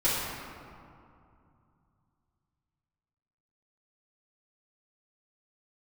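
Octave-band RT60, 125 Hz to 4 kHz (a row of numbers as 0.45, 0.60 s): 4.0, 3.2, 2.5, 2.6, 1.8, 1.2 s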